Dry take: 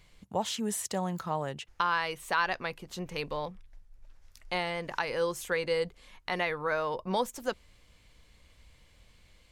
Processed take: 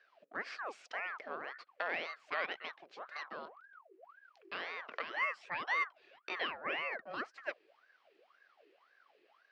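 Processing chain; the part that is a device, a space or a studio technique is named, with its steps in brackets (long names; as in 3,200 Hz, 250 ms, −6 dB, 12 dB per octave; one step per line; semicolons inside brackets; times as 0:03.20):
0:05.16–0:07.18: EQ curve with evenly spaced ripples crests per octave 1.9, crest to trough 9 dB
voice changer toy (ring modulator whose carrier an LFO sweeps 1,000 Hz, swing 65%, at 1.9 Hz; loudspeaker in its box 500–3,900 Hz, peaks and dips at 920 Hz −8 dB, 1,400 Hz −4 dB, 3,600 Hz −8 dB)
level −3 dB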